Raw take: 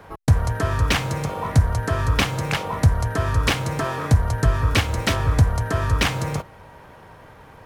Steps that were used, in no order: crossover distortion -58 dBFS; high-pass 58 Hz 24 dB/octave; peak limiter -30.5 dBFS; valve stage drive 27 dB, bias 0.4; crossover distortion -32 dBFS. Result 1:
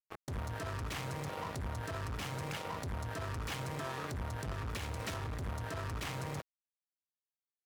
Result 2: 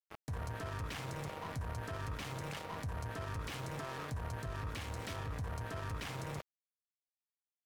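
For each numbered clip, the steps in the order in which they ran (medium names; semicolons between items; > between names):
second crossover distortion > valve stage > high-pass > peak limiter > first crossover distortion; high-pass > second crossover distortion > peak limiter > valve stage > first crossover distortion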